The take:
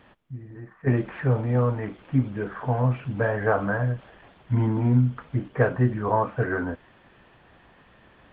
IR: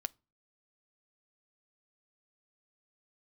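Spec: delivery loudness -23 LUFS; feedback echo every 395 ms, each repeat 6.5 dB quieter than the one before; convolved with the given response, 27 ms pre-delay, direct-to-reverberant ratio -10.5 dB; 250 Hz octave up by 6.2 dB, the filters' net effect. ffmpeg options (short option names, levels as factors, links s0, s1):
-filter_complex "[0:a]equalizer=f=250:t=o:g=7,aecho=1:1:395|790|1185|1580|1975|2370:0.473|0.222|0.105|0.0491|0.0231|0.0109,asplit=2[s0][s1];[1:a]atrim=start_sample=2205,adelay=27[s2];[s1][s2]afir=irnorm=-1:irlink=0,volume=3.76[s3];[s0][s3]amix=inputs=2:normalize=0,volume=0.251"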